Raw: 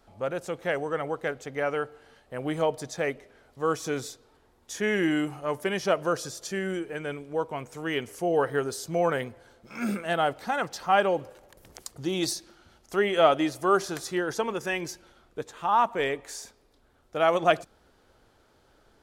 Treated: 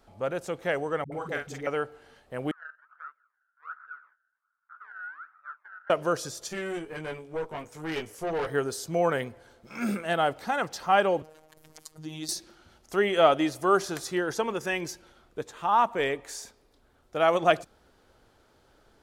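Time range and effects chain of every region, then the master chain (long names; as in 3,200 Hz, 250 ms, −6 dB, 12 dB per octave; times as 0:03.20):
0:01.04–0:01.67: parametric band 480 Hz −5.5 dB 1.3 octaves + double-tracking delay 45 ms −5 dB + all-pass dispersion highs, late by 79 ms, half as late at 320 Hz
0:02.51–0:05.90: sample-and-hold swept by an LFO 27× 1.3 Hz + flat-topped band-pass 1,400 Hz, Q 5.7
0:06.48–0:08.47: double-tracking delay 19 ms −4 dB + tube saturation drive 26 dB, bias 0.7
0:11.22–0:12.29: phases set to zero 156 Hz + downward compressor 1.5 to 1, threshold −46 dBFS
whole clip: no processing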